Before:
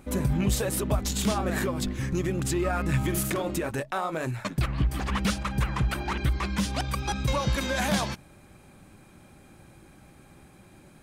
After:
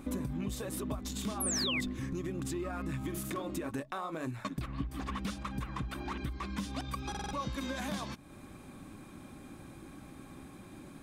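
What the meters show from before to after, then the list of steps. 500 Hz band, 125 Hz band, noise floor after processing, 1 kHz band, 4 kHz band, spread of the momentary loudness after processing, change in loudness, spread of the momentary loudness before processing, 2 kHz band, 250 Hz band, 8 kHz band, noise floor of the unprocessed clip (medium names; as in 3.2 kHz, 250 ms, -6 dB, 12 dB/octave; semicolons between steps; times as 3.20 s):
-10.5 dB, -12.0 dB, -52 dBFS, -9.0 dB, -6.0 dB, 16 LU, -9.0 dB, 5 LU, -9.5 dB, -7.5 dB, -6.5 dB, -54 dBFS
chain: compression 3:1, threshold -41 dBFS, peak gain reduction 15.5 dB; small resonant body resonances 270/1100/3600 Hz, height 9 dB, ringing for 35 ms; painted sound fall, 1.40–1.81 s, 1.9–12 kHz -34 dBFS; buffer glitch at 7.10 s, samples 2048, times 4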